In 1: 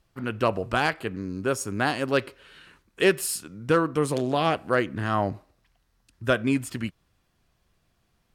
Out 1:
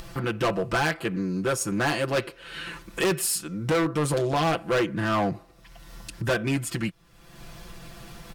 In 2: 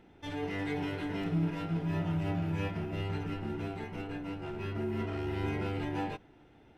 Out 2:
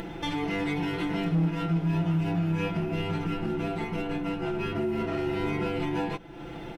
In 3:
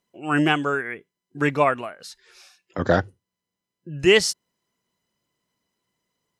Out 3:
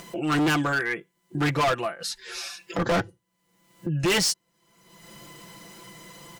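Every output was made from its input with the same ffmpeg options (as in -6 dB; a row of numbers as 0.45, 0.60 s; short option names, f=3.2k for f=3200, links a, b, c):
-af "aecho=1:1:5.9:0.91,acompressor=mode=upward:threshold=-24dB:ratio=2.5,volume=21dB,asoftclip=hard,volume=-21dB,volume=1dB"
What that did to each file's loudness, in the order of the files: -0.5, +6.0, -4.5 LU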